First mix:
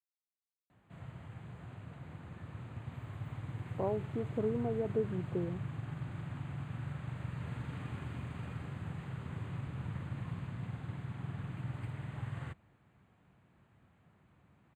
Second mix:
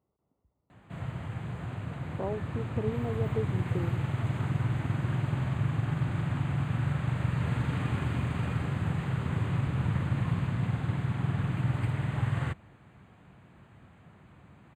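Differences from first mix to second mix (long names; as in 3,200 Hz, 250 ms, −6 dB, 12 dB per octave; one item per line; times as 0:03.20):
speech: entry −1.60 s
background +11.5 dB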